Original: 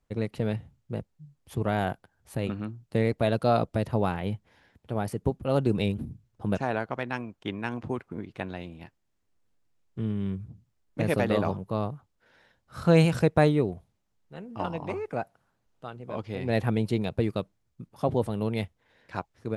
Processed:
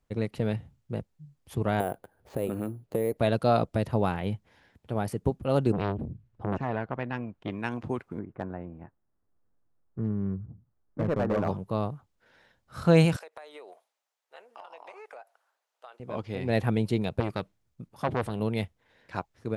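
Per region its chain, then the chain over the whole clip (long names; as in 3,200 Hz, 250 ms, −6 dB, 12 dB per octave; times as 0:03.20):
0:01.80–0:03.17: downward compressor 5 to 1, threshold −32 dBFS + parametric band 480 Hz +12.5 dB 1.7 octaves + bad sample-rate conversion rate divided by 4×, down filtered, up hold
0:05.72–0:07.51: bass and treble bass +4 dB, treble −14 dB + saturating transformer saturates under 840 Hz
0:08.19–0:11.48: low-pass filter 1,500 Hz 24 dB per octave + notch filter 970 Hz, Q 30 + hard clipping −21 dBFS
0:13.16–0:16.00: high-pass filter 570 Hz 24 dB per octave + downward compressor 20 to 1, threshold −41 dBFS
0:17.20–0:18.40: dynamic equaliser 2,400 Hz, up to +5 dB, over −48 dBFS, Q 0.77 + saturating transformer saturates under 980 Hz
whole clip: no processing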